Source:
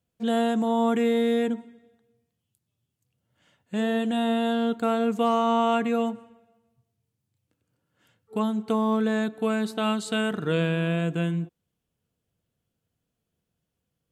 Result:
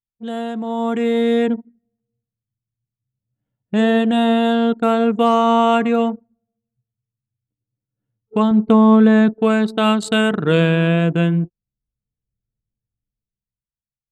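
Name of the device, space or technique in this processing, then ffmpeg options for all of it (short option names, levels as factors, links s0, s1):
voice memo with heavy noise removal: -filter_complex "[0:a]asettb=1/sr,asplit=3[s0][s1][s2];[s0]atrim=end=8.514[s3];[s1]atrim=start=8.51:end=9.34,asetpts=PTS-STARTPTS,afade=t=in:d=0.004:c=qsin,afade=t=out:st=0.826:d=0.004:c=qsin,bass=f=250:g=7,treble=f=4000:g=-7[s4];[s2]atrim=start=9.336[s5];[s3][s4]acrossfade=d=0.004:c1=hsin:c2=qsin[s6];[s6][s5]acrossfade=d=0.004:c1=qsin:c2=hsin,anlmdn=3.98,dynaudnorm=f=130:g=17:m=6.68,volume=0.75"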